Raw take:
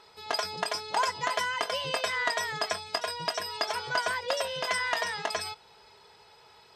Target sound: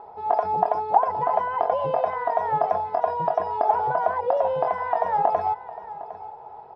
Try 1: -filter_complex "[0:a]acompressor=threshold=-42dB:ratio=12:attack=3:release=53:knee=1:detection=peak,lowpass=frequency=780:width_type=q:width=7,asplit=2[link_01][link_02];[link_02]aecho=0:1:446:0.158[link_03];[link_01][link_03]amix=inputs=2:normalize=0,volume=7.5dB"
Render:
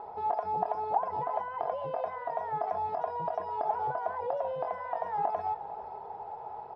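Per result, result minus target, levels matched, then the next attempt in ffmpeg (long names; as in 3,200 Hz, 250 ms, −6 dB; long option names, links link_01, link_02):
downward compressor: peak gain reduction +10.5 dB; echo 312 ms early
-filter_complex "[0:a]acompressor=threshold=-30.5dB:ratio=12:attack=3:release=53:knee=1:detection=peak,lowpass=frequency=780:width_type=q:width=7,asplit=2[link_01][link_02];[link_02]aecho=0:1:446:0.158[link_03];[link_01][link_03]amix=inputs=2:normalize=0,volume=7.5dB"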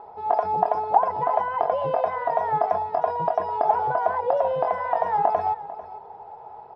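echo 312 ms early
-filter_complex "[0:a]acompressor=threshold=-30.5dB:ratio=12:attack=3:release=53:knee=1:detection=peak,lowpass=frequency=780:width_type=q:width=7,asplit=2[link_01][link_02];[link_02]aecho=0:1:758:0.158[link_03];[link_01][link_03]amix=inputs=2:normalize=0,volume=7.5dB"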